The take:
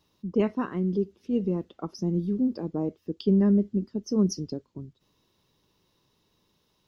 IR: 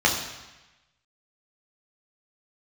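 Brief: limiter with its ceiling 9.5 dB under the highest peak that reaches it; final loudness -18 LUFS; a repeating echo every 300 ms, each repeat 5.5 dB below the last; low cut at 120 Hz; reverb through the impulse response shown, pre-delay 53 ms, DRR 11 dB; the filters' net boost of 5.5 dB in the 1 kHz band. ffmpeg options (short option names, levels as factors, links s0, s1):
-filter_complex "[0:a]highpass=120,equalizer=f=1000:t=o:g=6.5,alimiter=limit=0.0794:level=0:latency=1,aecho=1:1:300|600|900|1200|1500|1800|2100:0.531|0.281|0.149|0.079|0.0419|0.0222|0.0118,asplit=2[s0][s1];[1:a]atrim=start_sample=2205,adelay=53[s2];[s1][s2]afir=irnorm=-1:irlink=0,volume=0.0398[s3];[s0][s3]amix=inputs=2:normalize=0,volume=4.22"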